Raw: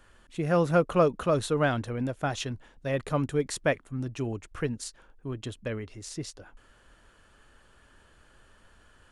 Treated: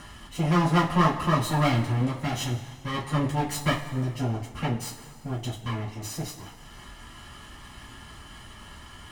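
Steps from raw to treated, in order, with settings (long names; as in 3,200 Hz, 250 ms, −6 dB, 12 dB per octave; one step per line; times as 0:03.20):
lower of the sound and its delayed copy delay 1 ms
upward compression, threshold −36 dBFS
coupled-rooms reverb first 0.21 s, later 1.8 s, from −18 dB, DRR −7 dB
level −3.5 dB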